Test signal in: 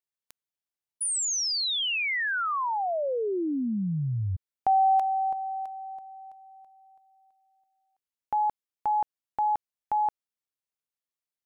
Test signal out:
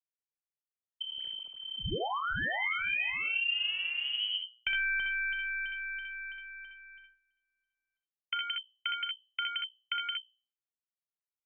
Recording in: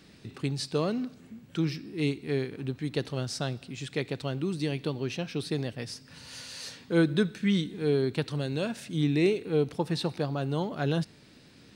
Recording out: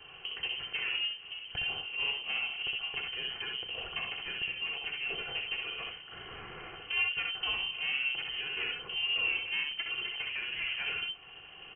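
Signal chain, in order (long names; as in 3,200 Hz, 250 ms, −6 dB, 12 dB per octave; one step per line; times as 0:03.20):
lower of the sound and its delayed copy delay 3 ms
noise gate with hold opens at −55 dBFS, hold 71 ms, range −20 dB
mains-hum notches 60/120/180 Hz
in parallel at 0 dB: brickwall limiter −25.5 dBFS
on the sum: downward compressor 2 to 1, threshold −40 dBFS
on a send: ambience of single reflections 35 ms −14.5 dB, 63 ms −4 dB, 78 ms −9.5 dB
on the sum: voice inversion scrambler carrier 3,100 Hz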